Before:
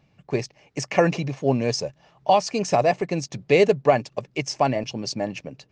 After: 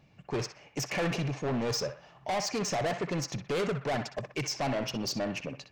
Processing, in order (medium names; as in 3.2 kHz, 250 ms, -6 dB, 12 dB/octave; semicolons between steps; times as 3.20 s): peak limiter -11.5 dBFS, peak gain reduction 6 dB; saturation -27.5 dBFS, distortion -6 dB; band-passed feedback delay 62 ms, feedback 49%, band-pass 1.5 kHz, level -6 dB